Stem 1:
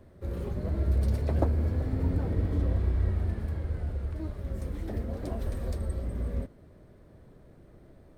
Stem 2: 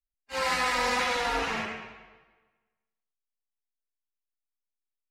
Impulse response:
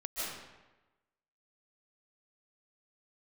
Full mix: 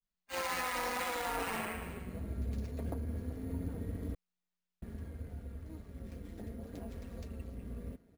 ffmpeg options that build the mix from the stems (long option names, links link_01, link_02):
-filter_complex "[0:a]highpass=70,equalizer=frequency=840:width_type=o:width=1.9:gain=-5.5,aecho=1:1:4.3:0.52,adelay=1500,volume=-6dB,asplit=3[link_01][link_02][link_03];[link_01]atrim=end=4.15,asetpts=PTS-STARTPTS,afade=type=out:start_time=4.146:duration=0.004:curve=hsin[link_04];[link_02]atrim=start=4.15:end=4.82,asetpts=PTS-STARTPTS,volume=0[link_05];[link_03]atrim=start=4.82,asetpts=PTS-STARTPTS,afade=type=in:duration=0.004:curve=hsin[link_06];[link_04][link_05][link_06]concat=n=3:v=0:a=1[link_07];[1:a]adynamicequalizer=threshold=0.00891:dfrequency=1600:dqfactor=0.7:tfrequency=1600:tqfactor=0.7:attack=5:release=100:ratio=0.375:range=2:mode=cutabove:tftype=highshelf,volume=0dB[link_08];[link_07][link_08]amix=inputs=2:normalize=0,tremolo=f=180:d=0.571,acrusher=samples=4:mix=1:aa=0.000001,alimiter=level_in=2.5dB:limit=-24dB:level=0:latency=1:release=64,volume=-2.5dB"